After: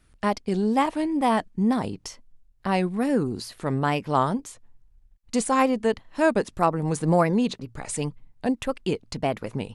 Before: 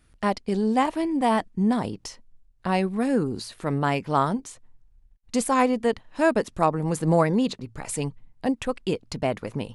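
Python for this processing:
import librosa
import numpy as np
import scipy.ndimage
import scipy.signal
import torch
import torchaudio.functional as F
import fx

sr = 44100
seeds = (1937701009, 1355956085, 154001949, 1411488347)

y = fx.wow_flutter(x, sr, seeds[0], rate_hz=2.1, depth_cents=84.0)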